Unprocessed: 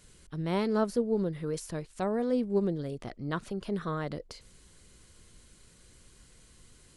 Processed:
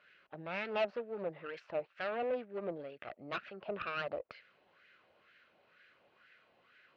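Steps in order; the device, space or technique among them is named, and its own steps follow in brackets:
wah-wah guitar rig (LFO wah 2.1 Hz 790–1,700 Hz, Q 3.9; tube saturation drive 44 dB, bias 0.65; loudspeaker in its box 94–4,200 Hz, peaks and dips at 600 Hz +8 dB, 1,000 Hz −9 dB, 2,600 Hz +9 dB)
level +12.5 dB

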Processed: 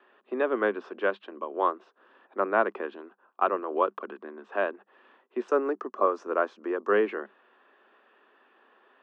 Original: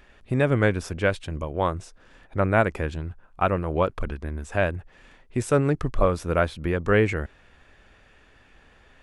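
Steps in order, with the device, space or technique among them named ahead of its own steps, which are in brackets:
Chebyshev high-pass filter 200 Hz, order 8
noise gate with hold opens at −54 dBFS
phone earpiece (loudspeaker in its box 350–3,100 Hz, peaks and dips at 380 Hz +6 dB, 1,100 Hz +7 dB, 2,200 Hz −10 dB)
0:05.48–0:06.90: high shelf with overshoot 4,800 Hz +10 dB, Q 3
level −3 dB

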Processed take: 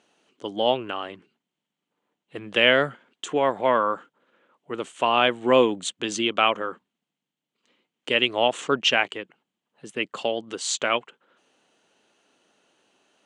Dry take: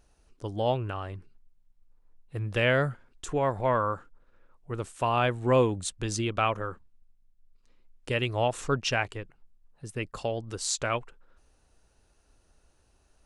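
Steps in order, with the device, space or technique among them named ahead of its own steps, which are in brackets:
television speaker (loudspeaker in its box 200–7,900 Hz, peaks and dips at 2,100 Hz +3 dB, 3,100 Hz +10 dB, 5,200 Hz −7 dB)
level +5 dB

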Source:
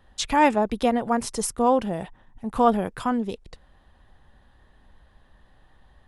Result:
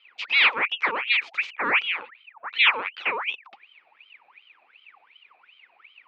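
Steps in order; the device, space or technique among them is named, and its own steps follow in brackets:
0:01.54–0:02.48: low-pass that shuts in the quiet parts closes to 680 Hz, open at −19.5 dBFS
voice changer toy (ring modulator whose carrier an LFO sweeps 1,900 Hz, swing 65%, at 2.7 Hz; loudspeaker in its box 440–3,500 Hz, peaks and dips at 660 Hz −8 dB, 1,600 Hz −5 dB, 2,400 Hz +10 dB)

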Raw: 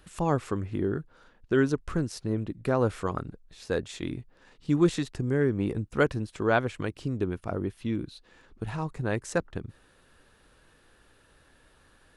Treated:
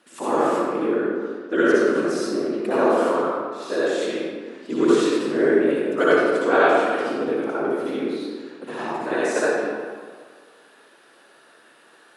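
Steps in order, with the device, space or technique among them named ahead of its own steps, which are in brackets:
whispering ghost (random phases in short frames; high-pass filter 270 Hz 24 dB per octave; convolution reverb RT60 1.7 s, pre-delay 55 ms, DRR −8.5 dB)
level +1 dB

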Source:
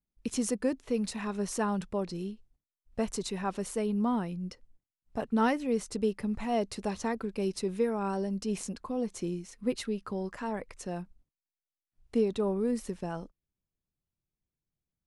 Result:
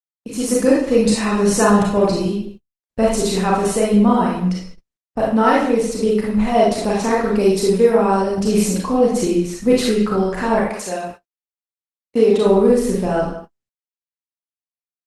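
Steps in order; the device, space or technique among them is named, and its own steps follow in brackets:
0:10.59–0:12.45: high-pass filter 960 Hz → 250 Hz 6 dB per octave
speakerphone in a meeting room (convolution reverb RT60 0.55 s, pre-delay 29 ms, DRR −4 dB; far-end echo of a speakerphone 160 ms, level −14 dB; automatic gain control gain up to 14.5 dB; noise gate −33 dBFS, range −57 dB; Opus 20 kbit/s 48,000 Hz)

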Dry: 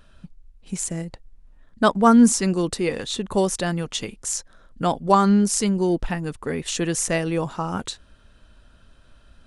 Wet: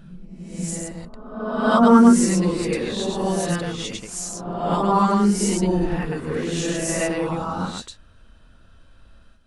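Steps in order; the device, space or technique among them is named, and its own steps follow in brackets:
reverse reverb (reversed playback; convolution reverb RT60 1.2 s, pre-delay 90 ms, DRR −8 dB; reversed playback)
level −8 dB

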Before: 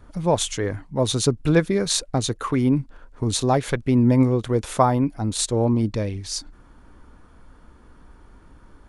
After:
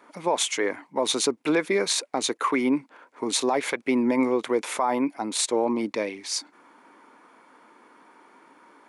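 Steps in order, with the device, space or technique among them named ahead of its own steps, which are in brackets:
laptop speaker (high-pass filter 270 Hz 24 dB per octave; parametric band 950 Hz +6.5 dB 0.57 octaves; parametric band 2,200 Hz +9.5 dB 0.42 octaves; brickwall limiter −13 dBFS, peak gain reduction 13 dB)

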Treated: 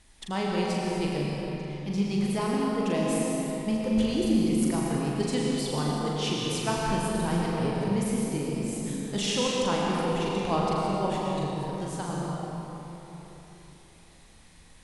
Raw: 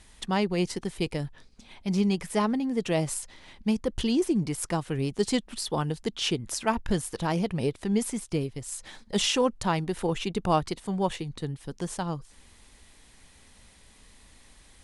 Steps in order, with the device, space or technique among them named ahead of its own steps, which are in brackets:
tunnel (flutter between parallel walls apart 7 metres, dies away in 0.49 s; convolution reverb RT60 3.9 s, pre-delay 96 ms, DRR −2.5 dB)
level −5.5 dB

